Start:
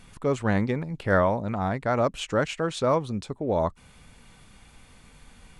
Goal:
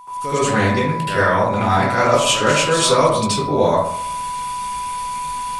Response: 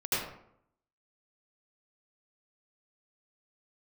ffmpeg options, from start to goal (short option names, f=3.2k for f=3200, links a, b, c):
-filter_complex "[0:a]dynaudnorm=f=100:g=3:m=16dB,crystalizer=i=8:c=0,aeval=exprs='val(0)+0.112*sin(2*PI*990*n/s)':c=same,aeval=exprs='2.24*(cos(1*acos(clip(val(0)/2.24,-1,1)))-cos(1*PI/2))+0.141*(cos(2*acos(clip(val(0)/2.24,-1,1)))-cos(2*PI/2))':c=same[a];[1:a]atrim=start_sample=2205[b];[a][b]afir=irnorm=-1:irlink=0,volume=-14.5dB"